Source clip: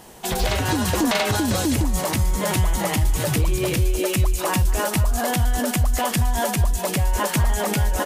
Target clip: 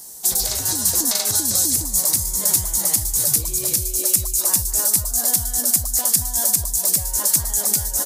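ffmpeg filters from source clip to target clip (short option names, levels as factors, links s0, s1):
-af "aexciter=amount=14.2:drive=2.7:freq=4300,volume=0.299"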